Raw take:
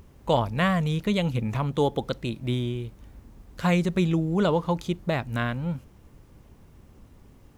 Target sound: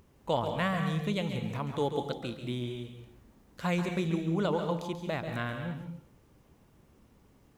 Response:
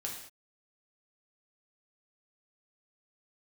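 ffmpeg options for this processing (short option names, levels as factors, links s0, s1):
-filter_complex "[0:a]lowshelf=f=84:g=-11,asplit=2[s0][s1];[1:a]atrim=start_sample=2205,adelay=137[s2];[s1][s2]afir=irnorm=-1:irlink=0,volume=0.501[s3];[s0][s3]amix=inputs=2:normalize=0,volume=0.473"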